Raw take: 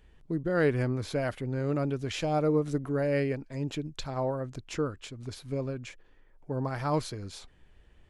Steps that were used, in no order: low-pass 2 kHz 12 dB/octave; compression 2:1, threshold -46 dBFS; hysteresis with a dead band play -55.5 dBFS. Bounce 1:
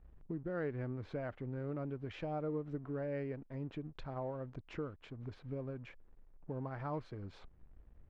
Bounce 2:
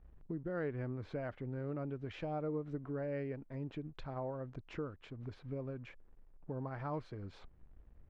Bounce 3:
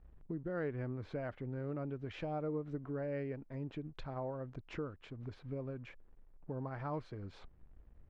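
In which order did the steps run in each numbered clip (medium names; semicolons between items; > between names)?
compression > hysteresis with a dead band > low-pass; hysteresis with a dead band > compression > low-pass; hysteresis with a dead band > low-pass > compression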